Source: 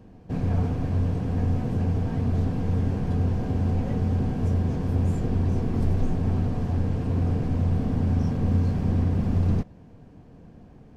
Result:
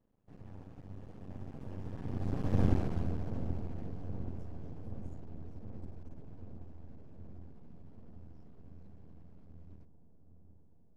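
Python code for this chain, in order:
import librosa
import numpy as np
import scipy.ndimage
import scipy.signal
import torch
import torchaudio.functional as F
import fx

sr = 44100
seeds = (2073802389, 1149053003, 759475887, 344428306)

y = fx.doppler_pass(x, sr, speed_mps=19, closest_m=3.1, pass_at_s=2.66)
y = np.maximum(y, 0.0)
y = fx.echo_wet_lowpass(y, sr, ms=777, feedback_pct=69, hz=890.0, wet_db=-11)
y = F.gain(torch.from_numpy(y), 1.0).numpy()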